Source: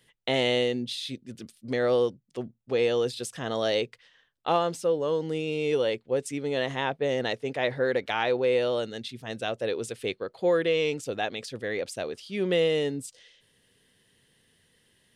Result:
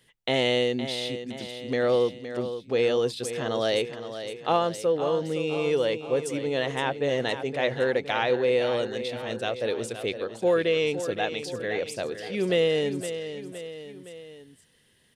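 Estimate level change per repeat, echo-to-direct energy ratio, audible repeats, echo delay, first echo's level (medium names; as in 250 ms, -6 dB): -5.0 dB, -9.0 dB, 3, 515 ms, -10.5 dB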